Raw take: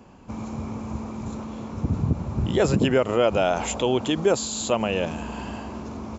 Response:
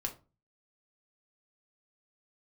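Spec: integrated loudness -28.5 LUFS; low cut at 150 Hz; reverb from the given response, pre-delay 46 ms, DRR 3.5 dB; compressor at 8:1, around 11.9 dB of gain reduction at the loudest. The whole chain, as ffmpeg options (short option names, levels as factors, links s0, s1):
-filter_complex "[0:a]highpass=150,acompressor=threshold=0.0398:ratio=8,asplit=2[s0][s1];[1:a]atrim=start_sample=2205,adelay=46[s2];[s1][s2]afir=irnorm=-1:irlink=0,volume=0.596[s3];[s0][s3]amix=inputs=2:normalize=0,volume=1.5"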